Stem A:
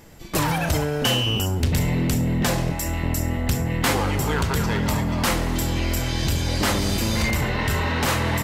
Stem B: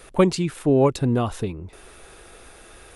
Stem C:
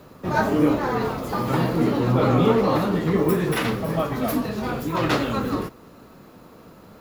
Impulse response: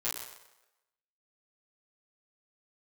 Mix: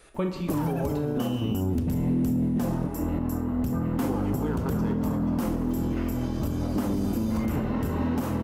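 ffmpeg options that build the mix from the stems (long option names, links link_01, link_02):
-filter_complex "[0:a]equalizer=frequency=250:width_type=o:width=1:gain=12,equalizer=frequency=2000:width_type=o:width=1:gain=-10,equalizer=frequency=4000:width_type=o:width=1:gain=-11,equalizer=frequency=8000:width_type=o:width=1:gain=-7,adelay=150,volume=-2dB[link_01];[1:a]acrossover=split=4300[link_02][link_03];[link_03]acompressor=threshold=-47dB:ratio=4:attack=1:release=60[link_04];[link_02][link_04]amix=inputs=2:normalize=0,volume=-11dB,asplit=2[link_05][link_06];[link_06]volume=-4.5dB[link_07];[2:a]asoftclip=type=hard:threshold=-24.5dB,afwtdn=0.0355,adelay=2400,volume=-10dB,asplit=2[link_08][link_09];[link_09]volume=-5dB[link_10];[3:a]atrim=start_sample=2205[link_11];[link_07][link_10]amix=inputs=2:normalize=0[link_12];[link_12][link_11]afir=irnorm=-1:irlink=0[link_13];[link_01][link_05][link_08][link_13]amix=inputs=4:normalize=0,alimiter=limit=-18dB:level=0:latency=1:release=420"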